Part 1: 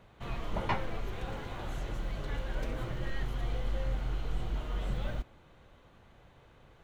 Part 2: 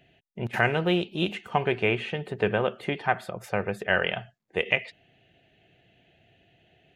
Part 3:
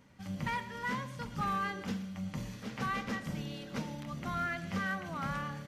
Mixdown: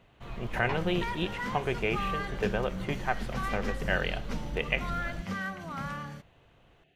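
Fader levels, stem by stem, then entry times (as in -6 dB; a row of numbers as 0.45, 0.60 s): -3.5, -5.5, 0.0 dB; 0.00, 0.00, 0.55 s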